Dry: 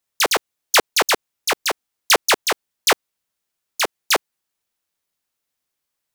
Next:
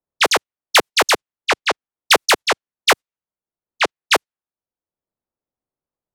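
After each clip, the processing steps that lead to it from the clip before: gate -24 dBFS, range -14 dB; level-controlled noise filter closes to 710 Hz, open at -13.5 dBFS; three bands compressed up and down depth 40%; trim +3 dB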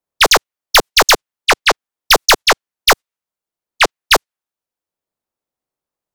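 bass shelf 410 Hz -7 dB; hard clipper -12 dBFS, distortion -10 dB; waveshaping leveller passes 1; trim +7.5 dB

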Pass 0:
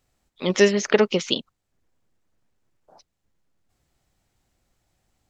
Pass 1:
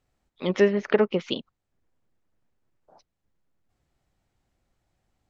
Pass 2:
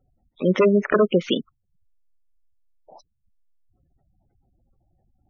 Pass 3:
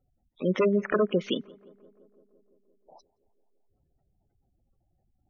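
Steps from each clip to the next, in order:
low-pass that closes with the level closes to 2.1 kHz, closed at -16 dBFS; treble shelf 4 kHz -9 dB; trim -2.5 dB
sine folder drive 10 dB, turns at -6 dBFS; spectral gate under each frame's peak -15 dB strong; trim -4.5 dB
tape echo 171 ms, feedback 83%, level -23.5 dB, low-pass 1.3 kHz; trim -6.5 dB

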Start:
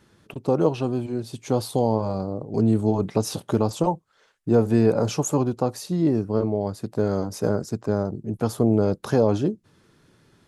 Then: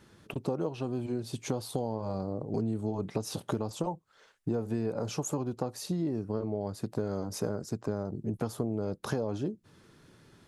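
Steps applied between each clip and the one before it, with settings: compression 6:1, threshold -29 dBFS, peak gain reduction 15.5 dB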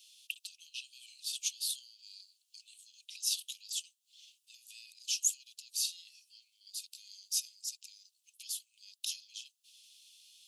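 steep high-pass 2.7 kHz 72 dB/octave; trim +9 dB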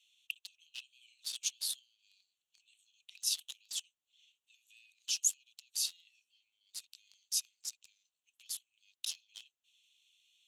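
local Wiener filter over 9 samples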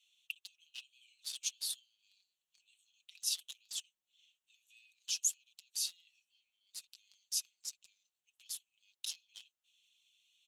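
comb 5.5 ms, depth 49%; trim -3 dB

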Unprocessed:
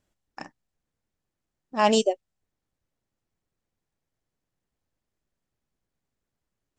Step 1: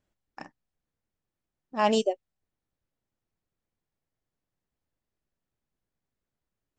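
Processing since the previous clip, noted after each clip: treble shelf 6.3 kHz -9 dB; trim -3 dB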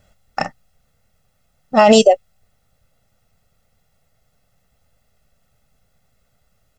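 comb 1.5 ms, depth 82%; loudness maximiser +21 dB; trim -1 dB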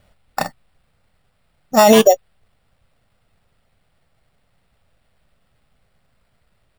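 sample-and-hold 7×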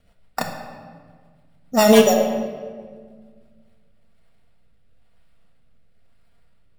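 rotary cabinet horn 7 Hz, later 1 Hz, at 3.08 s; simulated room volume 2200 m³, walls mixed, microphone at 1.7 m; trim -3 dB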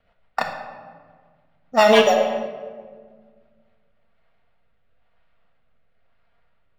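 three-band isolator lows -13 dB, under 580 Hz, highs -21 dB, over 4.3 kHz; tape noise reduction on one side only decoder only; trim +4.5 dB

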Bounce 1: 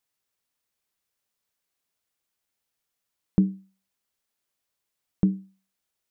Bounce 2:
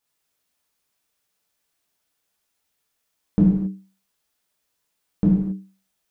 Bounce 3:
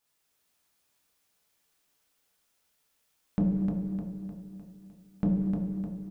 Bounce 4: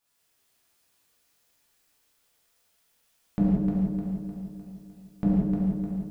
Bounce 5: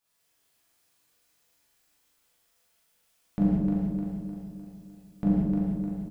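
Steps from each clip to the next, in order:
gated-style reverb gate 300 ms falling, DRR -6 dB
compression, threshold -21 dBFS, peak gain reduction 9 dB; saturation -19.5 dBFS, distortion -15 dB; feedback delay 304 ms, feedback 51%, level -4.5 dB
gated-style reverb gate 190 ms flat, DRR -2.5 dB
doubling 40 ms -3 dB; trim -2.5 dB

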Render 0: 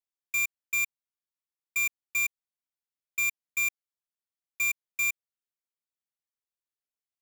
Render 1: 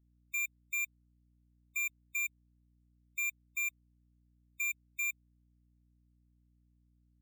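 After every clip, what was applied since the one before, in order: hum 60 Hz, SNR 28 dB; spectral gate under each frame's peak -25 dB strong; trim -7 dB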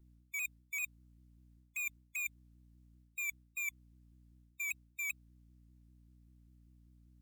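reverse; compression 12:1, threshold -45 dBFS, peak gain reduction 11.5 dB; reverse; vibrato with a chosen wave saw down 5.1 Hz, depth 100 cents; trim +7 dB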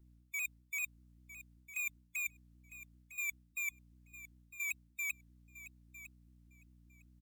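feedback delay 955 ms, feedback 15%, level -14.5 dB

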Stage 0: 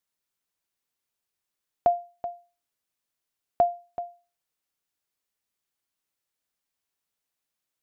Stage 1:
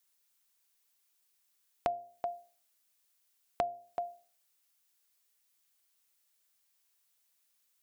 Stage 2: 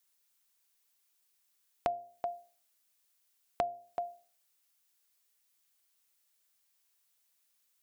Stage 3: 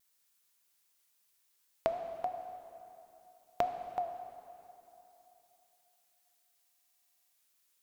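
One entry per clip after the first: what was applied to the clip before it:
tilt EQ +2.5 dB/octave; compression 4:1, threshold -34 dBFS, peak gain reduction 13 dB; de-hum 126.8 Hz, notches 6; trim +2 dB
no audible change
vibrato 3.6 Hz 95 cents; plate-style reverb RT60 3.2 s, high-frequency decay 0.8×, pre-delay 0 ms, DRR 6.5 dB; buffer glitch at 6.63 s, samples 2048, times 14; trim +1 dB

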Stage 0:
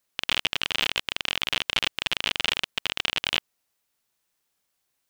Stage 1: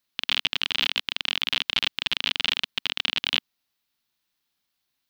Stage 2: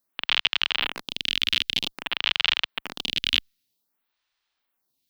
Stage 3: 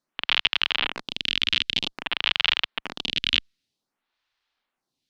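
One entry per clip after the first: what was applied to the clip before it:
ten-band graphic EQ 250 Hz +4 dB, 500 Hz -6 dB, 4 kHz +7 dB, 8 kHz -7 dB; trim -2 dB
lamp-driven phase shifter 0.52 Hz; trim +4 dB
distance through air 76 m; trim +2 dB

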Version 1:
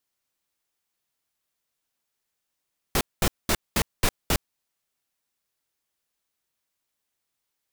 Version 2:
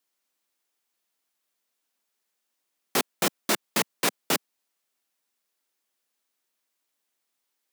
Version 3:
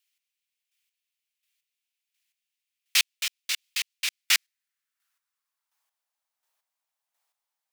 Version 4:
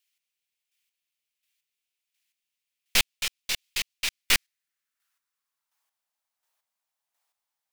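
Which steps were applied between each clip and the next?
high-pass 200 Hz 24 dB/octave; trim +1.5 dB
dynamic bell 4.9 kHz, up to +6 dB, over -42 dBFS, Q 0.8; square tremolo 1.4 Hz, depth 60%, duty 25%; high-pass sweep 2.5 kHz -> 780 Hz, 4.02–6.06 s
tracing distortion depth 0.081 ms

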